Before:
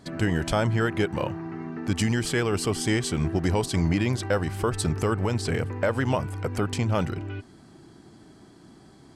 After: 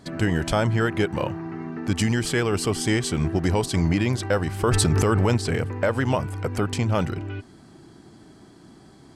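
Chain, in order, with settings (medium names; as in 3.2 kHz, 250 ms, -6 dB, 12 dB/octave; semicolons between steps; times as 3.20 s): 4.63–5.37 s: level flattener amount 100%; trim +2 dB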